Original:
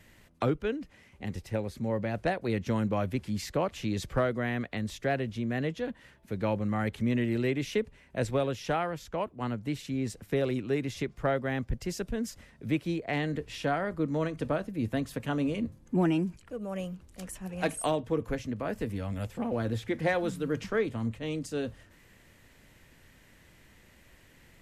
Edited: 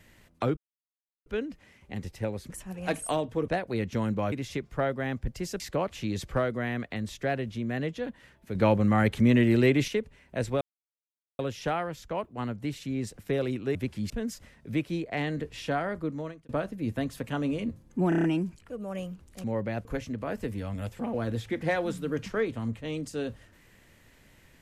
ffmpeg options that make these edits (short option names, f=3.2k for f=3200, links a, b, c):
-filter_complex "[0:a]asplit=19[a][b][c][d][e][f][g][h][i][j][k][l][m][n][o][p][q][r][s];[a]atrim=end=0.57,asetpts=PTS-STARTPTS,afade=t=out:st=0.566:d=0.004:c=hsin,apad=pad_dur=0.69[t];[b]atrim=start=0.57:end=1.812,asetpts=PTS-STARTPTS,afade=t=in:d=0.004:c=hsin[u];[c]atrim=start=17.248:end=18.232[v];[d]atrim=start=2.218:end=3.062[w];[e]atrim=start=10.778:end=12.062[x];[f]atrim=start=3.408:end=6.362[y];[g]atrim=start=6.358:end=7.692,asetpts=PTS-STARTPTS,volume=7dB[z];[h]atrim=start=7.688:end=8.42,asetpts=PTS-STARTPTS,afade=t=out:st=0.728:d=0.004:c=hsin,apad=pad_dur=0.78[aa];[i]atrim=start=8.42:end=10.782,asetpts=PTS-STARTPTS,afade=t=in:d=0.004:c=hsin[ab];[j]atrim=start=3.058:end=3.412[ac];[k]atrim=start=12.058:end=14.45,asetpts=PTS-STARTPTS,afade=t=out:st=1.852:d=0.54[ad];[l]atrim=start=14.45:end=16.082,asetpts=PTS-STARTPTS,afade=t=in:d=0.004:c=hsin[ae];[m]atrim=start=16.048:end=16.082[af];[n]atrim=start=16.048:end=16.082[ag];[o]atrim=start=16.048:end=16.082[ah];[p]atrim=start=16.048:end=16.082[ai];[q]atrim=start=16.048:end=17.252[aj];[r]atrim=start=1.808:end=2.222[ak];[s]atrim=start=18.228[al];[t][u]concat=n=2:v=0:a=1[am];[am][v]acrossfade=d=0.004:c1=hsin:c2=hsin[an];[an][w]acrossfade=d=0.004:c1=hsin:c2=hsin[ao];[ao][x]acrossfade=d=0.004:c1=hsin:c2=hsin[ap];[ap][y]acrossfade=d=0.004:c1=hsin:c2=hsin[aq];[aq][z]acrossfade=d=0.004:c1=hsin:c2=hsin[ar];[aa][ab]concat=n=2:v=0:a=1[as];[ar][as]acrossfade=d=0.004:c1=hsin:c2=hsin[at];[at][ac]acrossfade=d=0.004:c1=hsin:c2=hsin[au];[ad][ae]concat=n=2:v=0:a=1[av];[au][av]acrossfade=d=0.004:c1=hsin:c2=hsin[aw];[aw][af]acrossfade=d=0.004:c1=hsin:c2=hsin[ax];[ax][ag]acrossfade=d=0.004:c1=hsin:c2=hsin[ay];[ay][ah]acrossfade=d=0.004:c1=hsin:c2=hsin[az];[az][ai]acrossfade=d=0.004:c1=hsin:c2=hsin[ba];[ba][aj]acrossfade=d=0.004:c1=hsin:c2=hsin[bb];[bb][ak]acrossfade=d=0.004:c1=hsin:c2=hsin[bc];[bc][al]acrossfade=d=0.004:c1=hsin:c2=hsin"